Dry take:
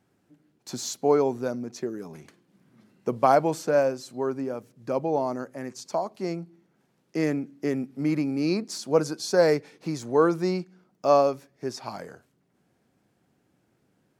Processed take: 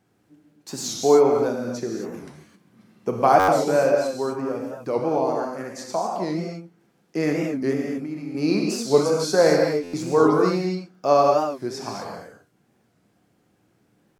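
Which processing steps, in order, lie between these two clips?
7.89–8.35 compressor 6:1, threshold -35 dBFS, peak gain reduction 13.5 dB; non-linear reverb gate 0.28 s flat, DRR -0.5 dB; stuck buffer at 3.39/9.83, samples 512, times 8; record warp 45 rpm, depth 160 cents; gain +1.5 dB

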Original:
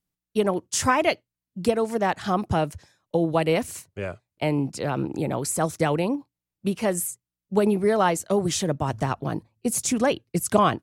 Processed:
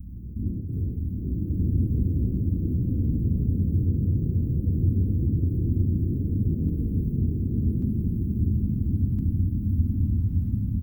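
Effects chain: per-bin compression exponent 0.2; inverse Chebyshev band-stop 530–9600 Hz, stop band 70 dB; comb 3.7 ms, depth 88%; echoes that change speed 84 ms, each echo +3 st, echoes 3; bloom reverb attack 1.31 s, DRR -4.5 dB

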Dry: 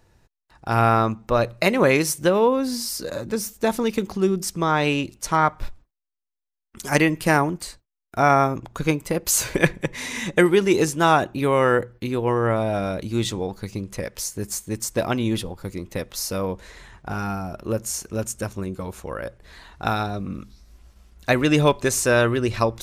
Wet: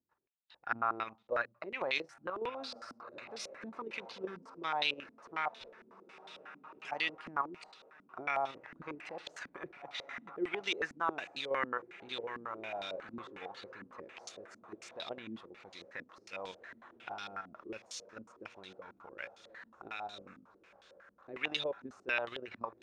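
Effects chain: differentiator; in parallel at -1 dB: compressor 6:1, threshold -40 dBFS, peak gain reduction 22 dB; on the sum: air absorption 61 m; level quantiser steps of 9 dB; on a send: diffused feedback echo 1.834 s, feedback 41%, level -15 dB; on the sum: stepped low-pass 11 Hz 250–3600 Hz; gain -1 dB

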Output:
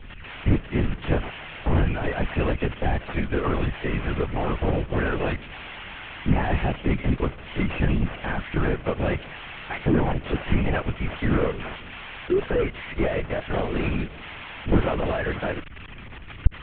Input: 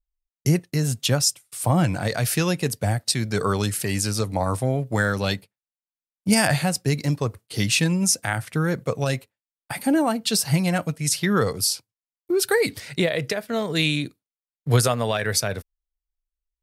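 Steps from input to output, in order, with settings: delta modulation 16 kbps, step -34 dBFS; high shelf 2200 Hz +8.5 dB; LPC vocoder at 8 kHz whisper

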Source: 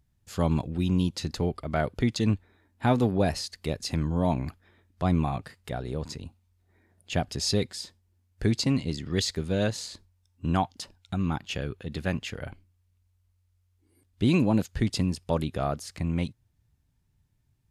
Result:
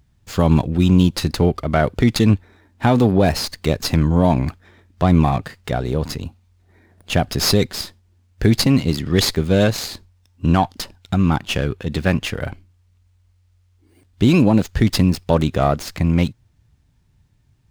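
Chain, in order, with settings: maximiser +15 dB; running maximum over 3 samples; gain -3.5 dB

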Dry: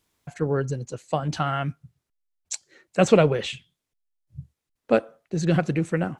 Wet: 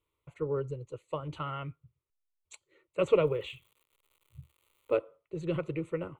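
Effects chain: high shelf 3500 Hz -10.5 dB; 3.21–4.94 crackle 220/s -45 dBFS; fixed phaser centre 1100 Hz, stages 8; gain -5.5 dB

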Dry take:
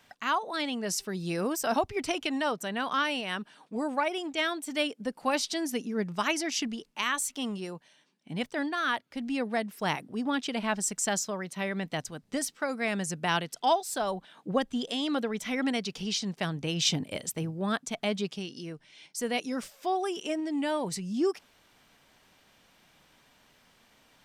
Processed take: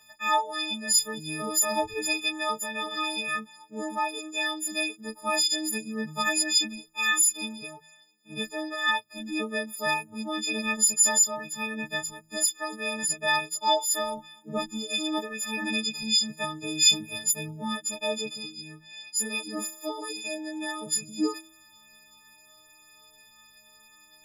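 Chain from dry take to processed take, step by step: frequency quantiser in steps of 6 st; chorus voices 6, 0.22 Hz, delay 17 ms, depth 2.2 ms; de-hum 80.18 Hz, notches 4

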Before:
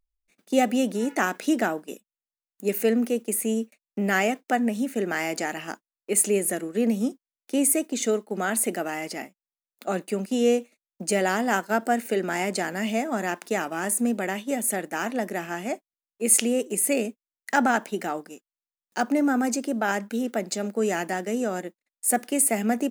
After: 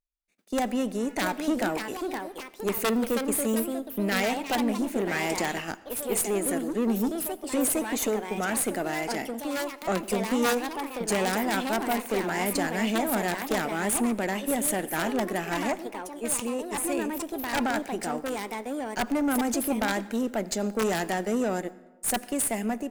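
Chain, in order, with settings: AGC gain up to 13.5 dB; wrapped overs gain 4 dB; tube stage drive 13 dB, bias 0.45; echoes that change speed 0.775 s, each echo +3 st, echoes 2, each echo -6 dB; on a send: reverb RT60 1.1 s, pre-delay 73 ms, DRR 18.5 dB; on the sum: gain -8 dB

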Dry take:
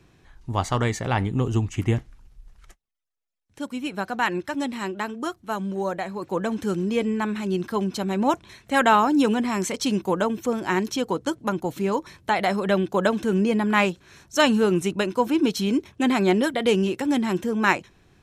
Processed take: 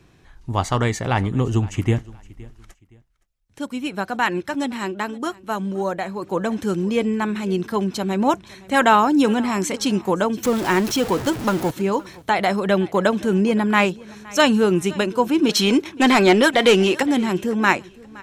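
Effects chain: 10.43–11.71 zero-crossing step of -27 dBFS; 15.49–17.03 overdrive pedal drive 16 dB, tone 6600 Hz, clips at -6.5 dBFS; feedback echo 0.517 s, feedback 30%, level -22 dB; gain +3 dB

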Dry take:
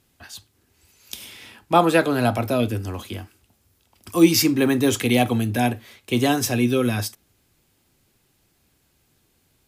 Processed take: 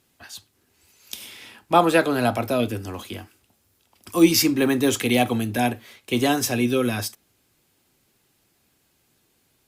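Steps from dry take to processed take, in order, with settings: low shelf 100 Hz -11 dB; Opus 64 kbps 48000 Hz

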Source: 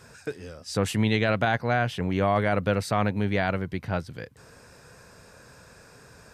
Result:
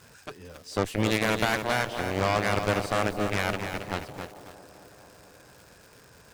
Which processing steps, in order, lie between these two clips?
added harmonics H 3 -18 dB, 7 -15 dB, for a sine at -12 dBFS; crackle 290/s -42 dBFS; on a send: band-limited delay 0.222 s, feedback 75%, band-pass 500 Hz, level -14 dB; on the sum: lo-fi delay 0.272 s, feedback 35%, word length 7-bit, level -7 dB

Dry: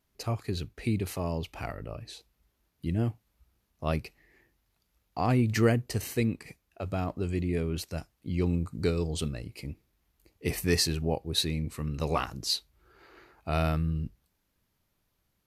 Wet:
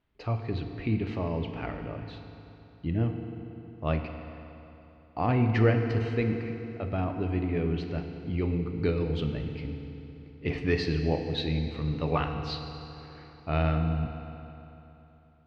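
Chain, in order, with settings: LPF 3400 Hz 24 dB/oct; FDN reverb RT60 3.3 s, high-frequency decay 0.8×, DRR 4.5 dB

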